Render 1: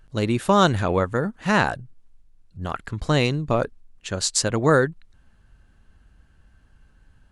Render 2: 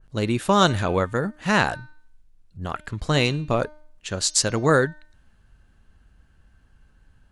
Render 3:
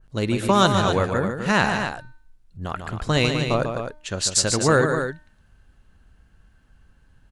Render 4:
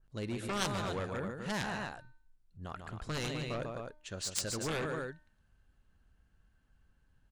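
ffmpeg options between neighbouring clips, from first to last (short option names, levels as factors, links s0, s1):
-af "bandreject=f=303.6:t=h:w=4,bandreject=f=607.2:t=h:w=4,bandreject=f=910.8:t=h:w=4,bandreject=f=1214.4:t=h:w=4,bandreject=f=1518:t=h:w=4,bandreject=f=1821.6:t=h:w=4,bandreject=f=2125.2:t=h:w=4,bandreject=f=2428.8:t=h:w=4,bandreject=f=2732.4:t=h:w=4,bandreject=f=3036:t=h:w=4,bandreject=f=3339.6:t=h:w=4,bandreject=f=3643.2:t=h:w=4,bandreject=f=3946.8:t=h:w=4,bandreject=f=4250.4:t=h:w=4,bandreject=f=4554:t=h:w=4,bandreject=f=4857.6:t=h:w=4,bandreject=f=5161.2:t=h:w=4,bandreject=f=5464.8:t=h:w=4,bandreject=f=5768.4:t=h:w=4,bandreject=f=6072:t=h:w=4,bandreject=f=6375.6:t=h:w=4,adynamicequalizer=threshold=0.0316:dfrequency=1800:dqfactor=0.7:tfrequency=1800:tqfactor=0.7:attack=5:release=100:ratio=0.375:range=2:mode=boostabove:tftype=highshelf,volume=0.891"
-af "aecho=1:1:145.8|256.6:0.447|0.398"
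-af "aeval=exprs='0.891*(cos(1*acos(clip(val(0)/0.891,-1,1)))-cos(1*PI/2))+0.355*(cos(3*acos(clip(val(0)/0.891,-1,1)))-cos(3*PI/2))+0.0501*(cos(7*acos(clip(val(0)/0.891,-1,1)))-cos(7*PI/2))':c=same,volume=0.376"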